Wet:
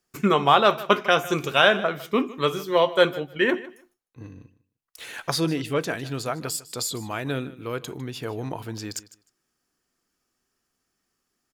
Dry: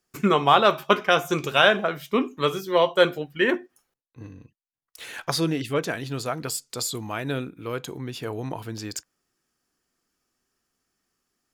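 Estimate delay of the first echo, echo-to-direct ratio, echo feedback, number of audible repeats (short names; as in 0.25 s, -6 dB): 0.153 s, -18.0 dB, 17%, 2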